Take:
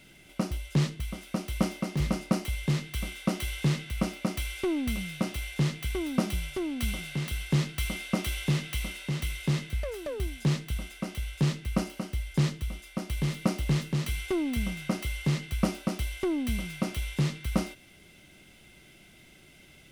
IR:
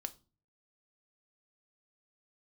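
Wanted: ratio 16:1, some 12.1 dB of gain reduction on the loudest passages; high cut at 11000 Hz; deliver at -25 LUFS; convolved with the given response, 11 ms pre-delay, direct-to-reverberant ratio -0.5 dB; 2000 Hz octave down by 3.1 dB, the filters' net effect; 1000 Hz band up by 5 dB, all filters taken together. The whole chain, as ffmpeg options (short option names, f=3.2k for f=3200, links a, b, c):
-filter_complex "[0:a]lowpass=11k,equalizer=f=1k:t=o:g=8,equalizer=f=2k:t=o:g=-5.5,acompressor=threshold=-32dB:ratio=16,asplit=2[a][b];[1:a]atrim=start_sample=2205,adelay=11[c];[b][c]afir=irnorm=-1:irlink=0,volume=3dB[d];[a][d]amix=inputs=2:normalize=0,volume=10.5dB"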